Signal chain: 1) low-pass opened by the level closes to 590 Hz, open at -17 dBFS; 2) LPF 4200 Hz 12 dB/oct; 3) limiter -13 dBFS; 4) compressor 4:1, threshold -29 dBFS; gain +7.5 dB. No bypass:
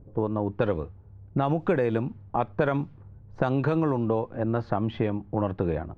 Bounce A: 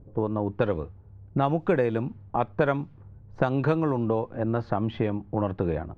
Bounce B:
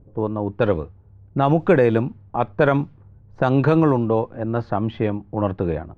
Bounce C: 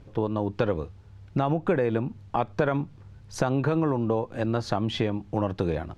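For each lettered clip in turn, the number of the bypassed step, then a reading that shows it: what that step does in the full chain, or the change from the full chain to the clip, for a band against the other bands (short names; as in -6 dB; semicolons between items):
3, momentary loudness spread change +1 LU; 4, crest factor change -3.0 dB; 1, 4 kHz band +9.0 dB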